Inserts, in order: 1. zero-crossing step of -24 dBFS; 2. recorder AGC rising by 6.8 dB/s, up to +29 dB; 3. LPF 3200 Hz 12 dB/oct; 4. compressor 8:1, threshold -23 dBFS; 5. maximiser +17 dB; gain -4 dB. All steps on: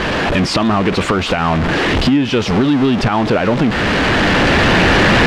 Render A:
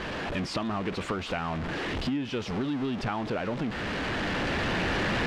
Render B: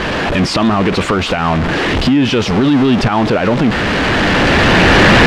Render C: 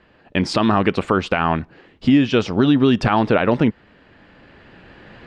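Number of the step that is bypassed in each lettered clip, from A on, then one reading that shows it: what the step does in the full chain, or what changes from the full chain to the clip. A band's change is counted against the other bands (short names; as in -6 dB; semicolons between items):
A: 5, crest factor change +5.5 dB; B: 4, mean gain reduction 2.5 dB; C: 1, distortion -5 dB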